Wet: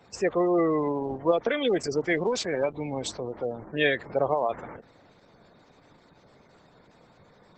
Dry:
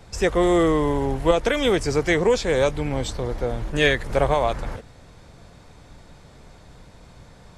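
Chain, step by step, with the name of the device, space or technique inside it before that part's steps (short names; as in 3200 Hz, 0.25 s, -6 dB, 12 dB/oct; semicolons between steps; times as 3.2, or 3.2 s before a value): 2.16–3.28 dynamic EQ 480 Hz, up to -6 dB, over -32 dBFS, Q 6.8; noise-suppressed video call (HPF 180 Hz 12 dB/oct; spectral gate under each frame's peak -20 dB strong; gain -4 dB; Opus 12 kbps 48000 Hz)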